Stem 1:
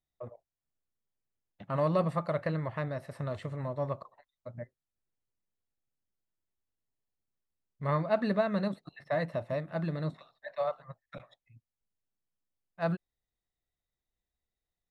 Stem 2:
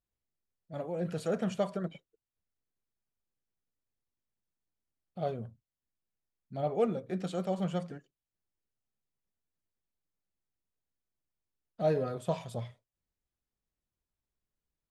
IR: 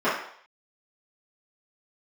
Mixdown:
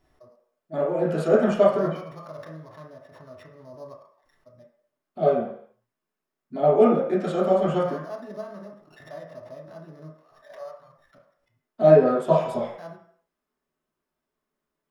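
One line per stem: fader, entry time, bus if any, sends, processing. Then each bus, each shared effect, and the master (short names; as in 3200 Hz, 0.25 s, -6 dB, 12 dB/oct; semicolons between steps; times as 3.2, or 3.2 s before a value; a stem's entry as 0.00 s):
-13.5 dB, 0.00 s, send -15.5 dB, sample sorter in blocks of 8 samples; LPF 1800 Hz 6 dB/oct; backwards sustainer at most 71 dB/s
0.0 dB, 0.00 s, send -5.5 dB, dry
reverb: on, RT60 0.60 s, pre-delay 3 ms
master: dry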